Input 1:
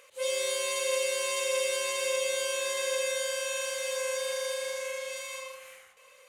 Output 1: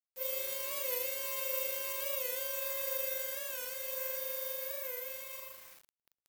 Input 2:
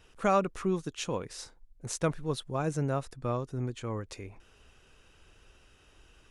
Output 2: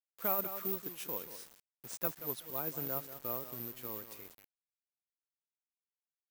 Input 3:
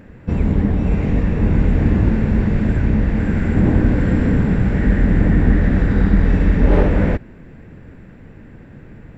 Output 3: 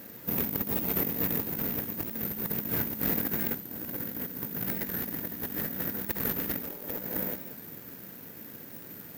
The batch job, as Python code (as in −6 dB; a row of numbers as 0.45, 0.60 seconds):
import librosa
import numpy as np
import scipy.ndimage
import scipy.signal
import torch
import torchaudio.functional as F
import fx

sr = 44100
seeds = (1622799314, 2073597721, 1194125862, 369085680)

y = fx.tracing_dist(x, sr, depth_ms=0.034)
y = fx.echo_feedback(y, sr, ms=188, feedback_pct=24, wet_db=-12.0)
y = fx.quant_float(y, sr, bits=2)
y = scipy.signal.sosfilt(scipy.signal.butter(2, 190.0, 'highpass', fs=sr, output='sos'), y)
y = fx.high_shelf(y, sr, hz=2800.0, db=-4.5)
y = fx.over_compress(y, sr, threshold_db=-25.0, ratio=-0.5)
y = fx.quant_dither(y, sr, seeds[0], bits=8, dither='none')
y = fx.low_shelf(y, sr, hz=480.0, db=-3.0)
y = (np.kron(y[::3], np.eye(3)[0]) * 3)[:len(y)]
y = fx.record_warp(y, sr, rpm=45.0, depth_cents=100.0)
y = y * librosa.db_to_amplitude(-9.0)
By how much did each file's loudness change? −5.0, −4.5, −13.0 LU